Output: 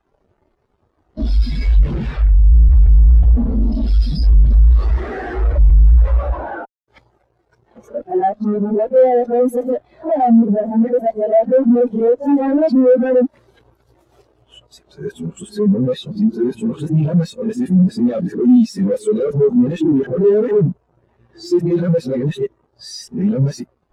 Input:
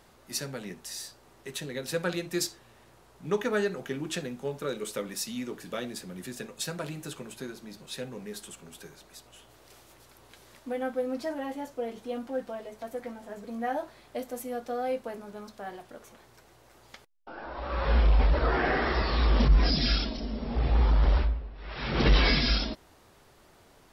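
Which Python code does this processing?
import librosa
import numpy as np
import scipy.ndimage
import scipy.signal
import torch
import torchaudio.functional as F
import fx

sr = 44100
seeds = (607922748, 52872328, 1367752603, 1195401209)

y = x[::-1].copy()
y = fx.fuzz(y, sr, gain_db=50.0, gate_db=-58.0)
y = fx.spectral_expand(y, sr, expansion=2.5)
y = y * librosa.db_to_amplitude(5.5)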